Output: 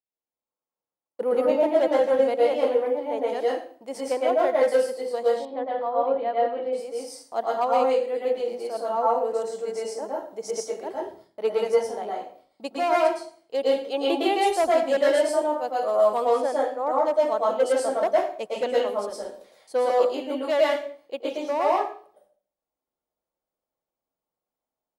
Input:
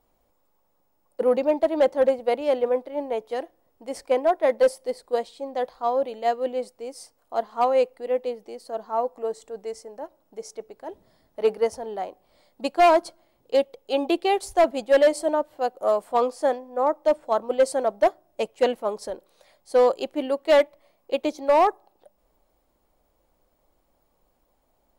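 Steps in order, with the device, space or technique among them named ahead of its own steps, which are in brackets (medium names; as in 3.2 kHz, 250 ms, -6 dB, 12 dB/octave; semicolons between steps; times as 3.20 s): gate -57 dBFS, range -27 dB; far laptop microphone (reverberation RT60 0.45 s, pre-delay 106 ms, DRR -4.5 dB; high-pass 160 Hz 6 dB/octave; level rider gain up to 11 dB); 5.45–6.73 s: distance through air 370 m; trim -9 dB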